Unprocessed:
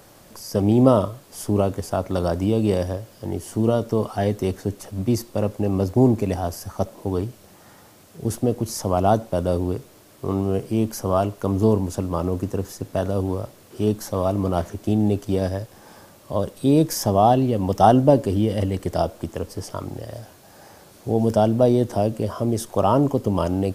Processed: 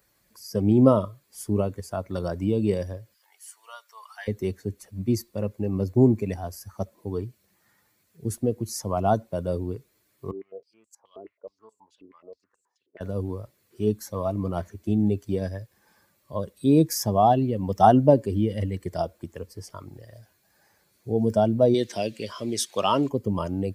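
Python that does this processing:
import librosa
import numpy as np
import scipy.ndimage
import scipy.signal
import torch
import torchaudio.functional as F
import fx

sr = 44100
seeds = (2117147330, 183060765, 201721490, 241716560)

y = fx.highpass(x, sr, hz=930.0, slope=24, at=(3.14, 4.28))
y = fx.filter_held_bandpass(y, sr, hz=9.4, low_hz=380.0, high_hz=7500.0, at=(10.31, 13.01))
y = fx.weighting(y, sr, curve='D', at=(21.74, 23.09))
y = fx.bin_expand(y, sr, power=1.5)
y = scipy.signal.sosfilt(scipy.signal.butter(2, 47.0, 'highpass', fs=sr, output='sos'), y)
y = fx.peak_eq(y, sr, hz=78.0, db=-6.5, octaves=0.32)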